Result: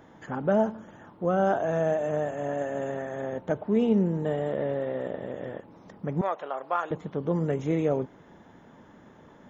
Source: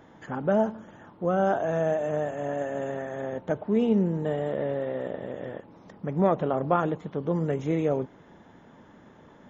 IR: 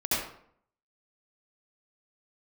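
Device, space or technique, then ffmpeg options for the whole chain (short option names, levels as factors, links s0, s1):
exciter from parts: -filter_complex "[0:a]asettb=1/sr,asplit=3[s0][s1][s2];[s0]atrim=end=6.214[s3];[s1]atrim=start=6.21:end=6.91,asetpts=PTS-STARTPTS,afade=t=in:d=0.004:c=qsin,afade=t=out:st=0.696:d=0.004:c=qsin,highpass=820[s4];[s2]atrim=start=6.906[s5];[s3][s4]acrossfade=d=0.004:c1=hsin:c2=qsin[s6];[s6][s5]acrossfade=d=0.004:c1=qsin:c2=hsin,asplit=2[s7][s8];[s8]highpass=f=2000:p=1,asoftclip=type=tanh:threshold=0.015,highpass=4300,volume=0.282[s9];[s7][s9]amix=inputs=2:normalize=0"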